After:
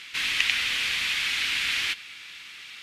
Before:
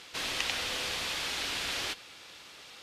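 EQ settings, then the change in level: EQ curve 230 Hz 0 dB, 610 Hz -11 dB, 2200 Hz +14 dB, 5100 Hz +4 dB; -1.5 dB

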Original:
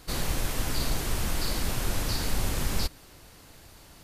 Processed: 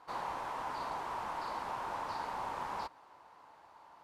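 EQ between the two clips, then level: band-pass 940 Hz, Q 4.6; +7.5 dB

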